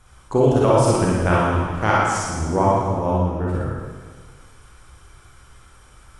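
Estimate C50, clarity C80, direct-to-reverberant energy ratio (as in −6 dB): −3.5 dB, 0.5 dB, −6.0 dB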